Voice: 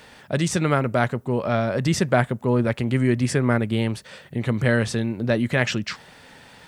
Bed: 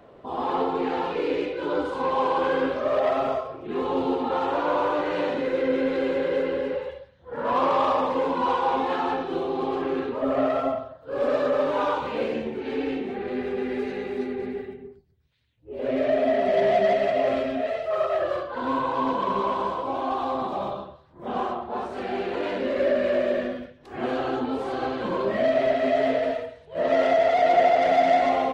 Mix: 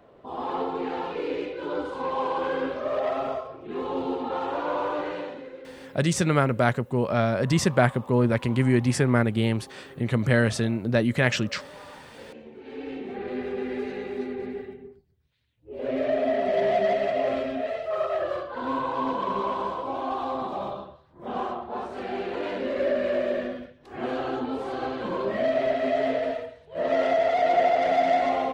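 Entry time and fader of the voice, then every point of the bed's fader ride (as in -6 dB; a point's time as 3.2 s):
5.65 s, -1.0 dB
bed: 5.06 s -4 dB
5.72 s -21.5 dB
12.06 s -21.5 dB
13.2 s -2.5 dB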